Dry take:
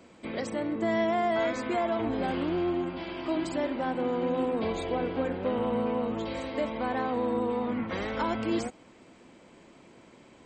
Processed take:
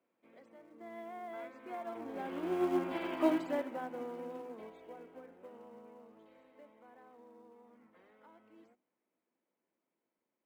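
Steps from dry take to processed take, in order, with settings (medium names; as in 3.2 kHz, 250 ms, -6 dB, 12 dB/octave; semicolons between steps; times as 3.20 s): Doppler pass-by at 3.03 s, 7 m/s, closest 1.9 m; three-band isolator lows -18 dB, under 190 Hz, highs -15 dB, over 2.8 kHz; in parallel at -8 dB: short-mantissa float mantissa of 2-bit; on the sum: hum notches 50/100/150/200/250/300/350 Hz; upward expansion 1.5:1, over -47 dBFS; trim +2.5 dB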